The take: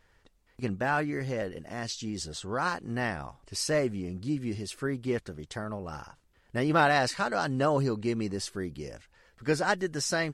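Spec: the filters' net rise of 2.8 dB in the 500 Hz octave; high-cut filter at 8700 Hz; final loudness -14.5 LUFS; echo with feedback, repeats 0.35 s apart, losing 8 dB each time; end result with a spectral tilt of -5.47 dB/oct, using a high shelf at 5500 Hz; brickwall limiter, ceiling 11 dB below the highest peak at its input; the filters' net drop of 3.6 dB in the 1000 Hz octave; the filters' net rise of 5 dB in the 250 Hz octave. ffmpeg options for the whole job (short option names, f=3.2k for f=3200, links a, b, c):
-af "lowpass=8.7k,equalizer=f=250:t=o:g=5.5,equalizer=f=500:t=o:g=4,equalizer=f=1k:t=o:g=-7.5,highshelf=f=5.5k:g=-3,alimiter=limit=-22.5dB:level=0:latency=1,aecho=1:1:350|700|1050|1400|1750:0.398|0.159|0.0637|0.0255|0.0102,volume=17.5dB"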